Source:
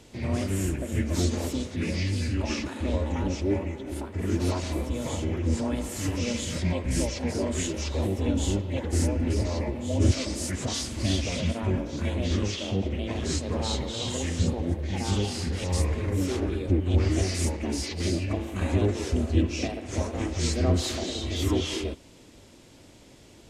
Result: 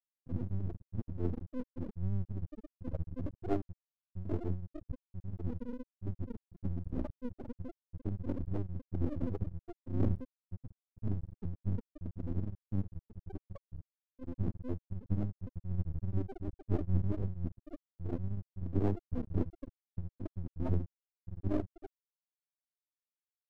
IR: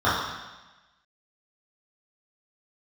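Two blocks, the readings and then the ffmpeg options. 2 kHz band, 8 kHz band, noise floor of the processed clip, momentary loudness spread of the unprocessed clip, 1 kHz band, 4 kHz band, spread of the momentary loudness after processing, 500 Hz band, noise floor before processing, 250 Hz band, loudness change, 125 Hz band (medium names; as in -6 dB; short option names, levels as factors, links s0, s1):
under -25 dB, under -40 dB, under -85 dBFS, 5 LU, -15.0 dB, under -35 dB, 14 LU, -14.0 dB, -52 dBFS, -11.5 dB, -11.5 dB, -10.0 dB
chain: -af "aecho=1:1:20|43|69.45|99.87|134.8:0.631|0.398|0.251|0.158|0.1,afftfilt=real='re*gte(hypot(re,im),0.398)':imag='im*gte(hypot(re,im),0.398)':win_size=1024:overlap=0.75,aeval=exprs='max(val(0),0)':c=same,volume=0.562"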